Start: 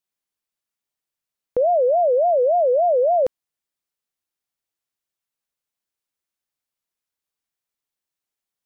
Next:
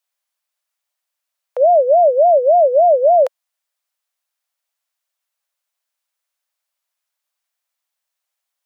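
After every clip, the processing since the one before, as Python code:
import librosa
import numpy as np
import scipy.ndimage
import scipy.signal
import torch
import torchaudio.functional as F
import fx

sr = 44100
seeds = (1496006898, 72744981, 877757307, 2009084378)

y = scipy.signal.sosfilt(scipy.signal.ellip(4, 1.0, 40, 560.0, 'highpass', fs=sr, output='sos'), x)
y = F.gain(torch.from_numpy(y), 7.5).numpy()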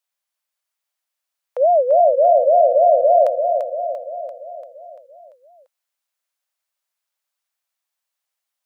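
y = fx.echo_feedback(x, sr, ms=342, feedback_pct=56, wet_db=-6)
y = F.gain(torch.from_numpy(y), -3.0).numpy()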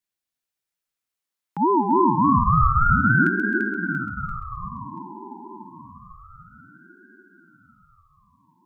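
y = fx.echo_split(x, sr, split_hz=620.0, low_ms=793, high_ms=132, feedback_pct=52, wet_db=-9)
y = fx.ring_lfo(y, sr, carrier_hz=610.0, swing_pct=50, hz=0.28)
y = F.gain(torch.from_numpy(y), -2.0).numpy()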